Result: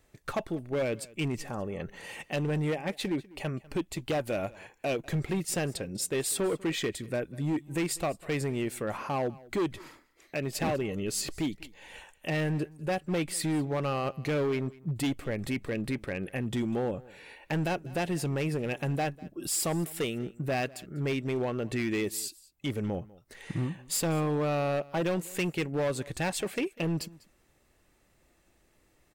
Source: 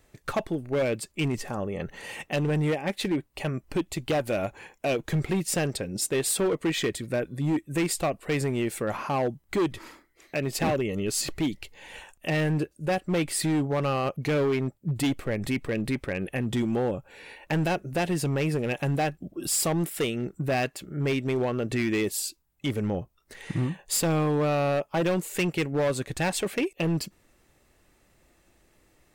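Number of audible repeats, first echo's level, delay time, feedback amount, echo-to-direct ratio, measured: 1, -22.0 dB, 197 ms, no regular repeats, -22.0 dB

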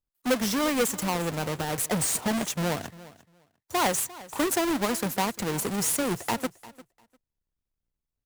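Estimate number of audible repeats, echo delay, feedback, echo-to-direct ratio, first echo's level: 2, 349 ms, 17%, -19.0 dB, -19.0 dB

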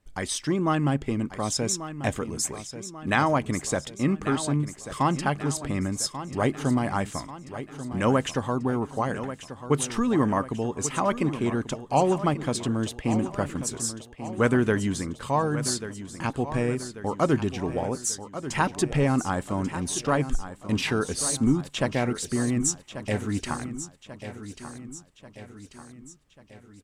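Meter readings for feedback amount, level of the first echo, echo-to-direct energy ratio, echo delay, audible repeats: 52%, -12.0 dB, -10.5 dB, 1139 ms, 5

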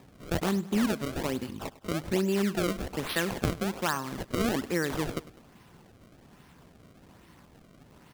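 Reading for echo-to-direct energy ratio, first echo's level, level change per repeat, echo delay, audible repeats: -17.0 dB, -18.0 dB, -5.5 dB, 101 ms, 2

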